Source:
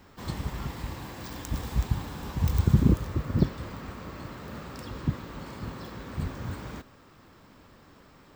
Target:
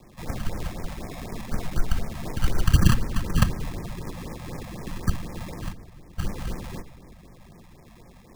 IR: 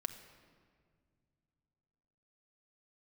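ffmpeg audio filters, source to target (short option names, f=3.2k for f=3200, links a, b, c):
-filter_complex "[0:a]acrusher=samples=29:mix=1:aa=0.000001,afreqshift=-70,asplit=3[a][b][c];[a]afade=t=out:st=5.7:d=0.02[d];[b]agate=range=-15dB:threshold=-35dB:ratio=16:detection=peak,afade=t=in:st=5.7:d=0.02,afade=t=out:st=6.21:d=0.02[e];[c]afade=t=in:st=6.21:d=0.02[f];[d][e][f]amix=inputs=3:normalize=0,asplit=2[g][h];[1:a]atrim=start_sample=2205[i];[h][i]afir=irnorm=-1:irlink=0,volume=2.5dB[j];[g][j]amix=inputs=2:normalize=0,afftfilt=real='re*(1-between(b*sr/1024,330*pow(3700/330,0.5+0.5*sin(2*PI*4*pts/sr))/1.41,330*pow(3700/330,0.5+0.5*sin(2*PI*4*pts/sr))*1.41))':imag='im*(1-between(b*sr/1024,330*pow(3700/330,0.5+0.5*sin(2*PI*4*pts/sr))/1.41,330*pow(3700/330,0.5+0.5*sin(2*PI*4*pts/sr))*1.41))':win_size=1024:overlap=0.75,volume=-2dB"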